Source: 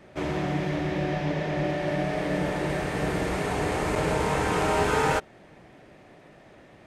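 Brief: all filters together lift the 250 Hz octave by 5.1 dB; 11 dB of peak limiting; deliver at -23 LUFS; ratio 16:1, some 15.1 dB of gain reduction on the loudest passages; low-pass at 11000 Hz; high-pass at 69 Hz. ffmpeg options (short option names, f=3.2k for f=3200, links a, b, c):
-af "highpass=69,lowpass=11k,equalizer=f=250:t=o:g=7.5,acompressor=threshold=-34dB:ratio=16,volume=22dB,alimiter=limit=-14dB:level=0:latency=1"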